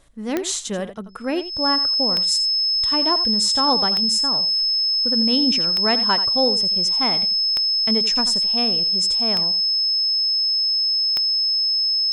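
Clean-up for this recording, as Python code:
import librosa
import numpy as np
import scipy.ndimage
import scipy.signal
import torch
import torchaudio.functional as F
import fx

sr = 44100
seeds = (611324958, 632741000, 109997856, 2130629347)

y = fx.fix_declick_ar(x, sr, threshold=10.0)
y = fx.notch(y, sr, hz=5200.0, q=30.0)
y = fx.fix_echo_inverse(y, sr, delay_ms=85, level_db=-13.0)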